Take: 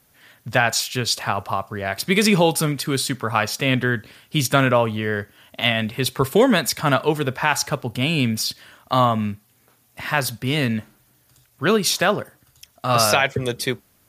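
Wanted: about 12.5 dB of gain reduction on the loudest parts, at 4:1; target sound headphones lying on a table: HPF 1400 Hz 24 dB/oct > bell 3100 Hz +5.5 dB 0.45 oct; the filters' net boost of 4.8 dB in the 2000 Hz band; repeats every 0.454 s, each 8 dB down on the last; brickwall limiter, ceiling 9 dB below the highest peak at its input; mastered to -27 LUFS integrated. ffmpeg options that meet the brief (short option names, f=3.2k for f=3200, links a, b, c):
-af "equalizer=f=2k:t=o:g=6,acompressor=threshold=-26dB:ratio=4,alimiter=limit=-17.5dB:level=0:latency=1,highpass=f=1.4k:w=0.5412,highpass=f=1.4k:w=1.3066,equalizer=f=3.1k:t=o:w=0.45:g=5.5,aecho=1:1:454|908|1362|1816|2270:0.398|0.159|0.0637|0.0255|0.0102,volume=4dB"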